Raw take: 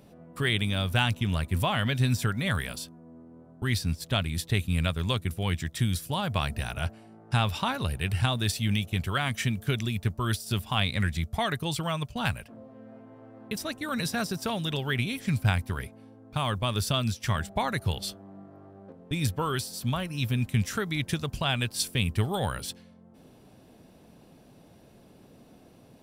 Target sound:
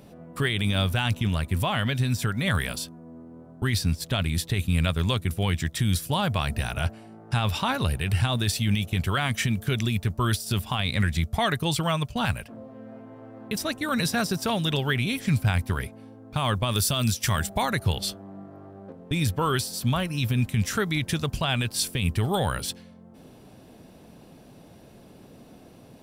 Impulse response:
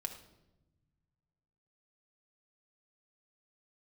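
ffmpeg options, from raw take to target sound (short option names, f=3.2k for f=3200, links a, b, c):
-filter_complex "[0:a]asettb=1/sr,asplit=3[a][b][c];[a]atrim=end=1.274[d];[b]atrim=start=1.27:end=2.48,asetpts=PTS-STARTPTS,afade=t=in:d=0.004:c=qsin,afade=t=out:st=1.206:d=0.004:c=qsin,acompressor=threshold=-29dB:ratio=2[e];[c]atrim=start=2.476[f];[d][e]acrossfade=d=0.004:c1=hsin:c2=qsin[g];[g][f]acrossfade=d=0.004:c1=qsin:c2=hsin,asettb=1/sr,asplit=3[h][i][j];[h]atrim=end=16.714[k];[i]atrim=start=16.71:end=17.7,asetpts=PTS-STARTPTS,afade=t=in:d=0.004:c=qsin,afade=t=out:st=0.986:d=0.004:c=qsin,highshelf=f=6.1k:g=11.5[l];[j]atrim=start=17.696[m];[k][l]acrossfade=d=0.004:c1=hsin:c2=qsin[n];[n][m]acrossfade=d=0.004:c1=qsin:c2=hsin,alimiter=limit=-19.5dB:level=0:latency=1:release=29,volume=5dB"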